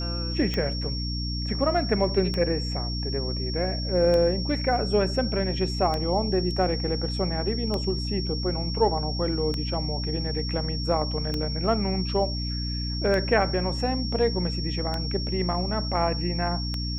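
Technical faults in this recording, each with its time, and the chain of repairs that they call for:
mains hum 60 Hz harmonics 5 −30 dBFS
scratch tick 33 1/3 rpm −15 dBFS
whistle 5,500 Hz −33 dBFS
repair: click removal
notch filter 5,500 Hz, Q 30
hum removal 60 Hz, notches 5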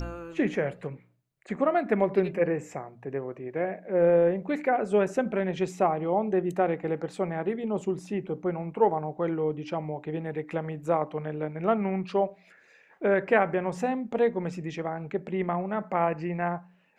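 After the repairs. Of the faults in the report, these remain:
none of them is left

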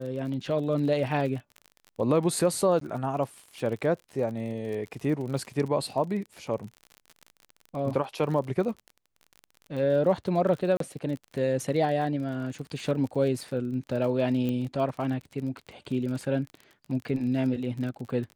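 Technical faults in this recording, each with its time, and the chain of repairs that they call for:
surface crackle 39 per second −35 dBFS
0:02.80–0:02.81: drop-out 13 ms
0:10.77–0:10.80: drop-out 33 ms
0:14.49: click −20 dBFS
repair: click removal
repair the gap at 0:02.80, 13 ms
repair the gap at 0:10.77, 33 ms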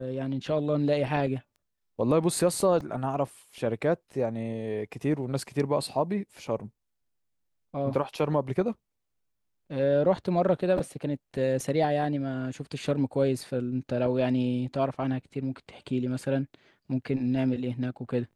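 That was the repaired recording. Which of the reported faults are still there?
none of them is left

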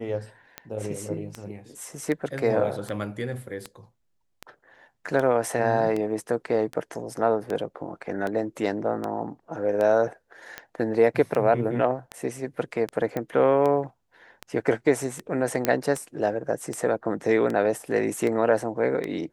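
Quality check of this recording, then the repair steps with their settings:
scratch tick 78 rpm −17 dBFS
0:13.17: click −16 dBFS
0:15.65: click −7 dBFS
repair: click removal

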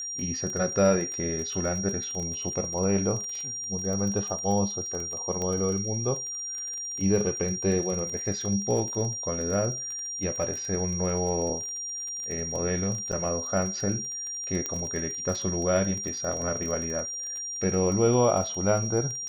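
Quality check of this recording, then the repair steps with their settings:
surface crackle 23 per second −32 dBFS
whistle 5,700 Hz −32 dBFS
0:05.42: click −19 dBFS
0:13.12–0:13.13: drop-out 6.3 ms
0:14.66: click −15 dBFS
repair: click removal
notch filter 5,700 Hz, Q 30
repair the gap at 0:13.12, 6.3 ms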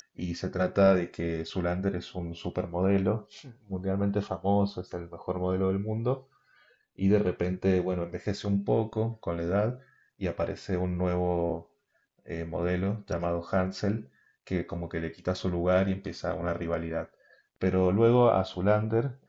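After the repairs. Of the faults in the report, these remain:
none of them is left

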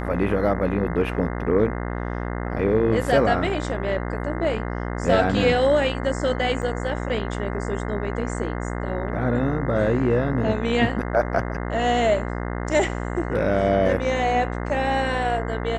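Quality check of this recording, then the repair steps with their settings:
mains buzz 60 Hz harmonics 35 −28 dBFS
0:06.62–0:06.63: drop-out 7.5 ms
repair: hum removal 60 Hz, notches 35
repair the gap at 0:06.62, 7.5 ms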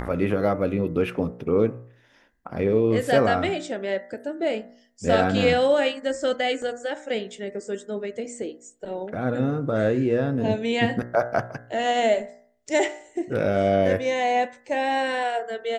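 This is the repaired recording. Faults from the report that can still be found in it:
none of them is left

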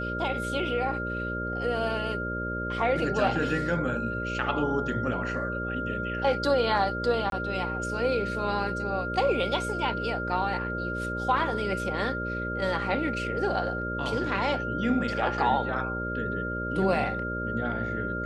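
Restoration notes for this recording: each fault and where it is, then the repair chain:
mains buzz 60 Hz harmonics 10 −34 dBFS
whistle 1,400 Hz −32 dBFS
0:07.30–0:07.32: drop-out 22 ms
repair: hum removal 60 Hz, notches 10
notch filter 1,400 Hz, Q 30
repair the gap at 0:07.30, 22 ms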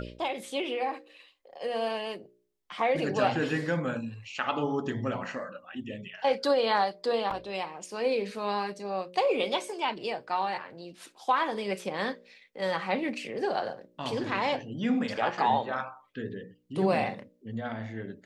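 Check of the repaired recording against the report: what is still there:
none of them is left

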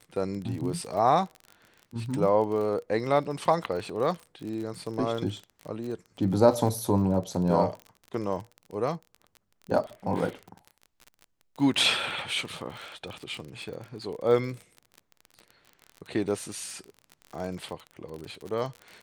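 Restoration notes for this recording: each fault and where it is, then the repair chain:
surface crackle 37 per second −34 dBFS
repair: click removal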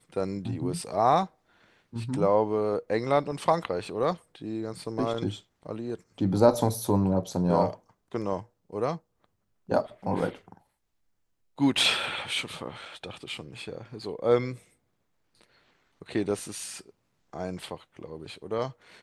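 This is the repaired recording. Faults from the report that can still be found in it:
none of them is left

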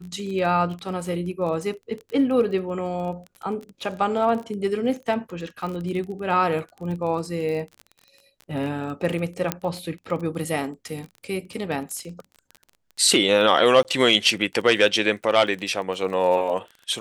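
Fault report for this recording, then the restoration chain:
surface crackle 24 per second −31 dBFS
0:09.52: click −6 dBFS
0:13.83–0:13.85: drop-out 18 ms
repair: click removal
repair the gap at 0:13.83, 18 ms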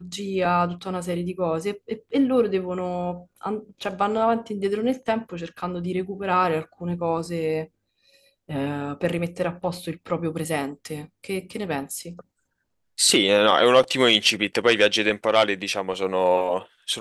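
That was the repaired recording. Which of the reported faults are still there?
none of them is left

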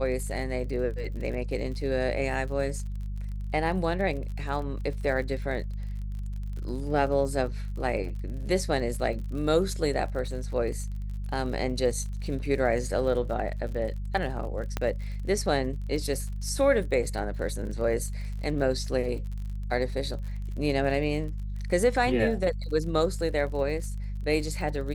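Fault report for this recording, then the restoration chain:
surface crackle 47 per second −37 dBFS
mains hum 50 Hz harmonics 4 −33 dBFS
0:14.77: click −14 dBFS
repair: click removal
hum removal 50 Hz, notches 4

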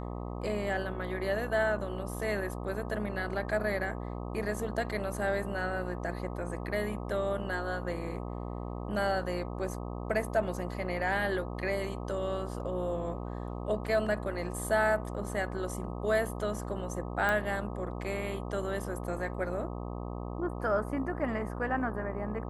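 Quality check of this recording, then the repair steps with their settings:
mains buzz 60 Hz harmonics 21 −38 dBFS
0:17.29: click −17 dBFS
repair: click removal
hum removal 60 Hz, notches 21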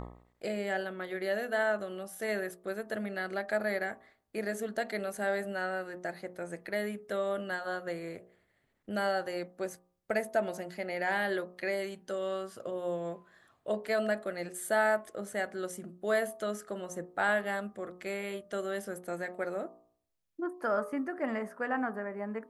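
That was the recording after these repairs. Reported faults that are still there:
none of them is left

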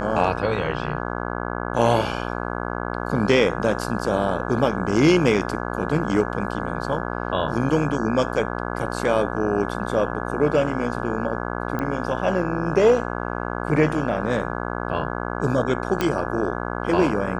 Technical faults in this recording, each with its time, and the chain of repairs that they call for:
mains buzz 60 Hz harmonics 28 −28 dBFS
0:11.79: click −15 dBFS
0:16.01: click −8 dBFS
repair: click removal
hum removal 60 Hz, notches 28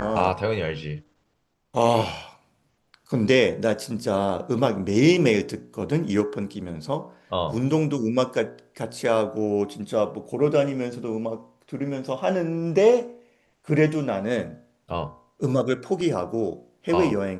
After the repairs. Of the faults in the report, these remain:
none of them is left

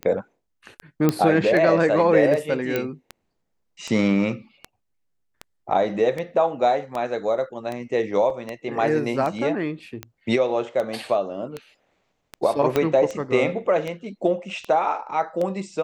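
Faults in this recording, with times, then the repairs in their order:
scratch tick 78 rpm −16 dBFS
0:01.09: click −6 dBFS
0:02.76: click −10 dBFS
0:08.30: drop-out 2.8 ms
0:12.76: click −7 dBFS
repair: click removal
repair the gap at 0:08.30, 2.8 ms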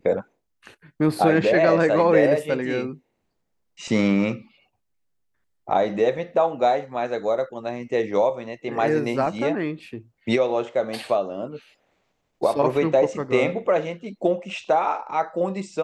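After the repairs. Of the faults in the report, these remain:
0:12.76: click

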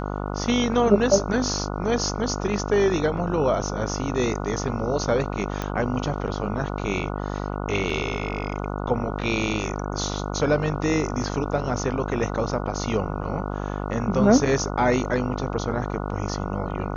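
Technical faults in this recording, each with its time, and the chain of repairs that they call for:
mains buzz 50 Hz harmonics 29 −29 dBFS
0:05.62: click −13 dBFS
0:07.90: drop-out 3.1 ms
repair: click removal
hum removal 50 Hz, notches 29
repair the gap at 0:07.90, 3.1 ms

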